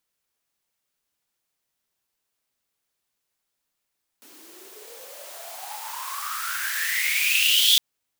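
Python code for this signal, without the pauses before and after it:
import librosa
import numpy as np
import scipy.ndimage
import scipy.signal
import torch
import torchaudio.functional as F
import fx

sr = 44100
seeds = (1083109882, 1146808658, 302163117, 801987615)

y = fx.riser_noise(sr, seeds[0], length_s=3.56, colour='white', kind='highpass', start_hz=280.0, end_hz=3500.0, q=11.0, swell_db=27.5, law='exponential')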